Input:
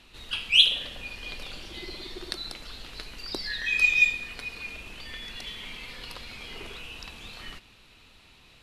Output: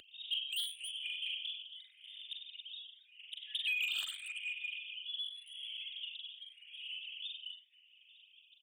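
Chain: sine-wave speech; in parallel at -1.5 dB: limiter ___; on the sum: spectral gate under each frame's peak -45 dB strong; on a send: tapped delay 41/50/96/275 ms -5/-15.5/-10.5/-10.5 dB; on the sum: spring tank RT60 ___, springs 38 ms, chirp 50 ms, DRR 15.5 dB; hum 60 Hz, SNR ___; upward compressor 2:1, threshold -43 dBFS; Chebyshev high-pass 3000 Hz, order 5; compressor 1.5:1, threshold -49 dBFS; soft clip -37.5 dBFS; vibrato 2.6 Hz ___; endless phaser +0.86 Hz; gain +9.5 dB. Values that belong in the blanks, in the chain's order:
-15 dBFS, 1.8 s, 13 dB, 5.6 cents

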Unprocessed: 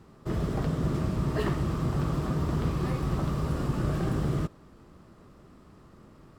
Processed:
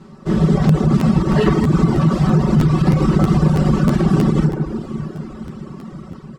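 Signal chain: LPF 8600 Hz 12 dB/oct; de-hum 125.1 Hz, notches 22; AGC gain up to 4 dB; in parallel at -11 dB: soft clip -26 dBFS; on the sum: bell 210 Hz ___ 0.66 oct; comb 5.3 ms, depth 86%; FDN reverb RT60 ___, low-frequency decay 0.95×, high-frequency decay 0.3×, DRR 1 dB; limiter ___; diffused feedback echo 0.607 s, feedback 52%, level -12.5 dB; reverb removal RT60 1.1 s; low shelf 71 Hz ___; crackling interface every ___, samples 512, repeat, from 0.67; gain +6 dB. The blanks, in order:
+7.5 dB, 2.3 s, -9 dBFS, -4.5 dB, 0.32 s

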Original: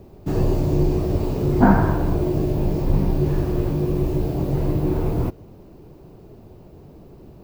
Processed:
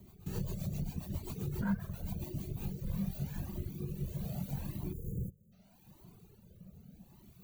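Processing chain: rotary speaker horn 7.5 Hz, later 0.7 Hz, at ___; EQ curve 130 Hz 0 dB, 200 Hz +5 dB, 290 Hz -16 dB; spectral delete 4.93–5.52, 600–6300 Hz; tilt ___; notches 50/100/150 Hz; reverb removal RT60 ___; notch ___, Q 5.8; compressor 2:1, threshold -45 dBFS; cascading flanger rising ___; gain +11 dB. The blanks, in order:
2.08, +4.5 dB/oct, 1.2 s, 5100 Hz, 0.83 Hz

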